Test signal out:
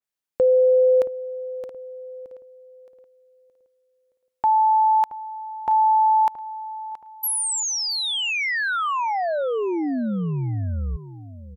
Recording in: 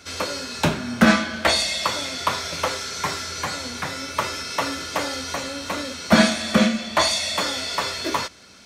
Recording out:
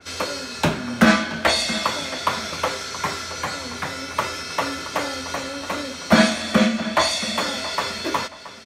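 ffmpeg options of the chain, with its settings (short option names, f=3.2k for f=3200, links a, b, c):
-filter_complex "[0:a]lowshelf=f=150:g=-2.5,asplit=2[a][b];[b]adelay=674,lowpass=f=3.7k:p=1,volume=-14.5dB,asplit=2[c][d];[d]adelay=674,lowpass=f=3.7k:p=1,volume=0.34,asplit=2[e][f];[f]adelay=674,lowpass=f=3.7k:p=1,volume=0.34[g];[a][c][e][g]amix=inputs=4:normalize=0,adynamicequalizer=threshold=0.0178:dfrequency=3000:dqfactor=0.7:tfrequency=3000:tqfactor=0.7:attack=5:release=100:ratio=0.375:range=1.5:mode=cutabove:tftype=highshelf,volume=1dB"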